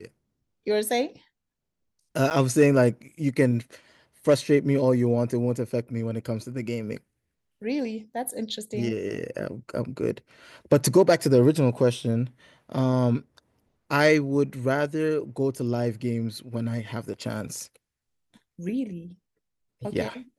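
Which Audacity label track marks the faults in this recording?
2.300000	2.310000	gap 9.4 ms

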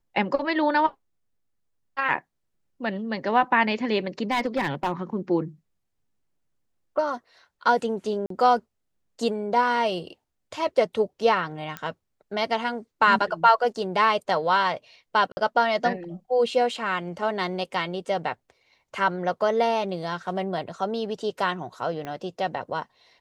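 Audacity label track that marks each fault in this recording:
4.310000	5.020000	clipped -19 dBFS
8.260000	8.300000	gap 43 ms
11.770000	11.770000	pop -16 dBFS
15.320000	15.370000	gap 50 ms
22.050000	22.050000	pop -21 dBFS

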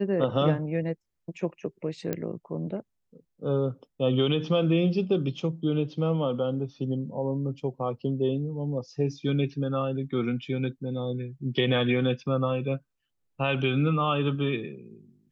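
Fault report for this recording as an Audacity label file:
2.130000	2.130000	pop -15 dBFS

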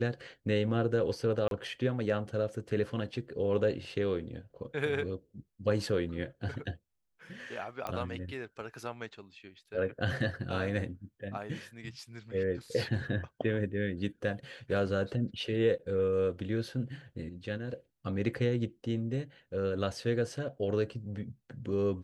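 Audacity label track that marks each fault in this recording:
1.480000	1.510000	gap 32 ms
7.870000	7.870000	pop -22 dBFS

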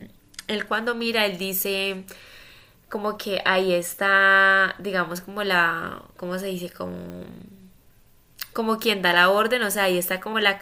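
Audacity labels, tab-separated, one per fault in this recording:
7.100000	7.100000	pop -24 dBFS

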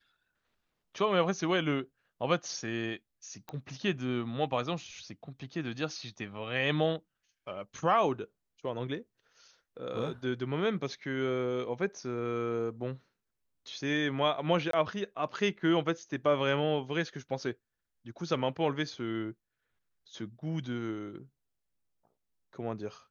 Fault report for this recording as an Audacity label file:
3.490000	3.490000	pop -26 dBFS
14.710000	14.730000	gap 23 ms

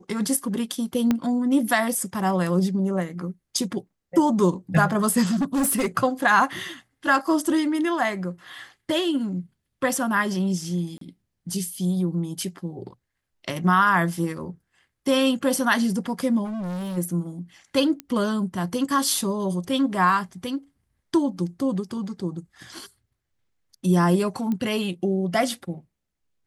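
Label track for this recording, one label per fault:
1.110000	1.110000	pop -9 dBFS
5.310000	5.870000	clipped -19 dBFS
10.980000	11.010000	gap 33 ms
16.440000	16.980000	clipped -28 dBFS
18.000000	18.000000	pop -16 dBFS
24.520000	24.520000	pop -17 dBFS

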